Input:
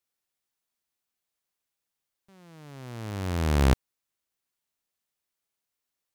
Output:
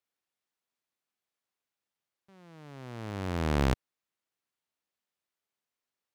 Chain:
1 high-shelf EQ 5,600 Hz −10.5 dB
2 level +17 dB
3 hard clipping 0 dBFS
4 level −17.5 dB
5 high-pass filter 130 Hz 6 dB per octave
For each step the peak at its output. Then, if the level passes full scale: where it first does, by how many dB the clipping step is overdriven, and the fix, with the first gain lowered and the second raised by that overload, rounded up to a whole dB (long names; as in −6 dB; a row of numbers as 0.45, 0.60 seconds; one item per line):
−13.0, +4.0, 0.0, −17.5, −12.0 dBFS
step 2, 4.0 dB
step 2 +13 dB, step 4 −13.5 dB